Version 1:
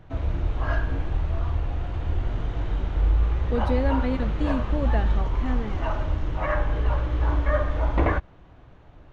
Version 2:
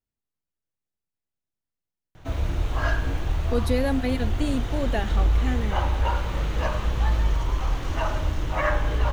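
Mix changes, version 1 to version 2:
background: entry +2.15 s
master: remove head-to-tape spacing loss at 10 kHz 23 dB

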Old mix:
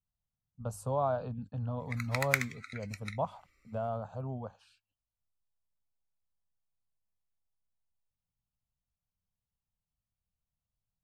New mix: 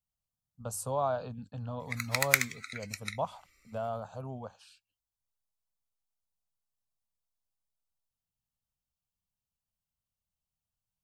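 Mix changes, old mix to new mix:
speech: add low-shelf EQ 210 Hz −5 dB
master: add high-shelf EQ 2,900 Hz +11.5 dB

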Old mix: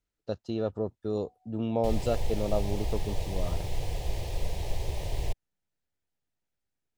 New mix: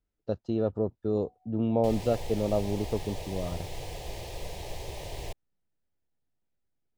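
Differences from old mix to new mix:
speech: add spectral tilt −3 dB per octave
master: add low-shelf EQ 140 Hz −10.5 dB

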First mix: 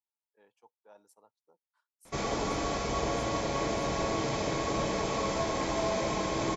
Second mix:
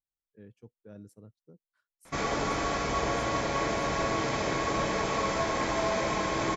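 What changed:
speech: remove high-pass with resonance 890 Hz, resonance Q 6.2
master: add parametric band 1,600 Hz +7 dB 1.2 octaves

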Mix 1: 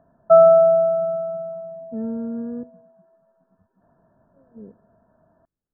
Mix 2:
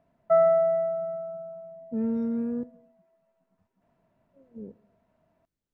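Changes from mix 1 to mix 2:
background −9.0 dB
master: remove linear-phase brick-wall low-pass 1,800 Hz

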